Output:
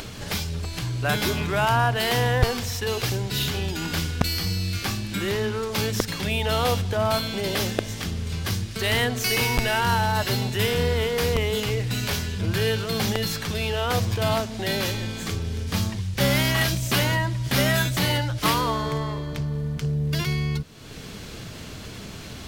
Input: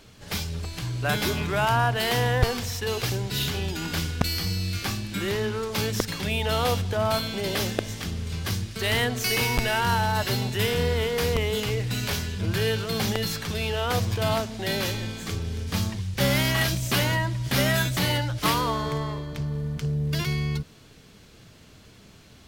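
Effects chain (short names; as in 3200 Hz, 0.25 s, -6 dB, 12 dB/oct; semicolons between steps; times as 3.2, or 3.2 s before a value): upward compressor, threshold -27 dBFS; gain +1.5 dB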